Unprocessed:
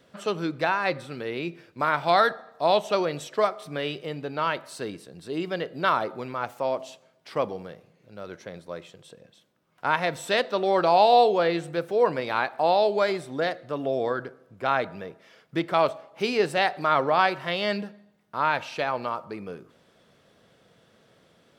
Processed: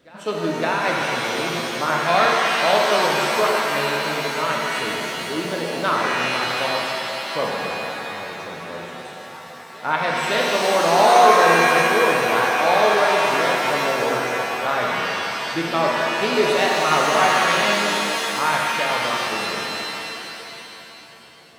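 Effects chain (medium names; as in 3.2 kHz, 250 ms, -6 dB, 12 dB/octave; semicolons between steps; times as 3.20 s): reverse echo 560 ms -23 dB; pitch-shifted reverb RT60 3.1 s, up +7 st, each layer -2 dB, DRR -2 dB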